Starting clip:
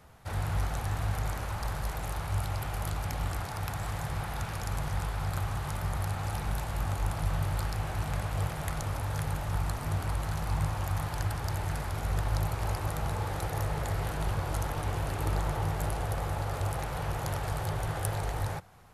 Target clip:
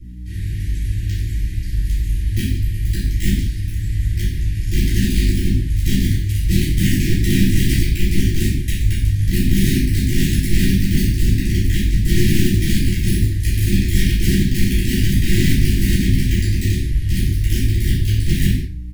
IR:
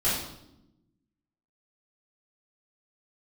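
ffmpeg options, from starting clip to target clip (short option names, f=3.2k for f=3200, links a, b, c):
-filter_complex "[0:a]asubboost=boost=6.5:cutoff=81,bandreject=f=60:t=h:w=6,bandreject=f=120:t=h:w=6,bandreject=f=180:t=h:w=6,aeval=exprs='(mod(6.68*val(0)+1,2)-1)/6.68':c=same,aeval=exprs='val(0)+0.0141*(sin(2*PI*60*n/s)+sin(2*PI*2*60*n/s)/2+sin(2*PI*3*60*n/s)/3+sin(2*PI*4*60*n/s)/4+sin(2*PI*5*60*n/s)/5)':c=same,asuperstop=centerf=810:order=20:qfactor=0.61,asplit=2[a][b];[b]adelay=31,volume=-11.5dB[c];[a][c]amix=inputs=2:normalize=0[d];[1:a]atrim=start_sample=2205,afade=t=out:st=0.26:d=0.01,atrim=end_sample=11907[e];[d][e]afir=irnorm=-1:irlink=0,volume=-8dB"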